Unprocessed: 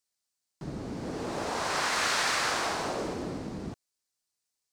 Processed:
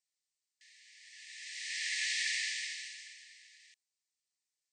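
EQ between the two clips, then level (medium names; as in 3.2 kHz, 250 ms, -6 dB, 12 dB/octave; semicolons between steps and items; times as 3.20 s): brick-wall FIR band-pass 1.7–9.1 kHz; tilt EQ -3.5 dB/octave; treble shelf 6.6 kHz +10 dB; 0.0 dB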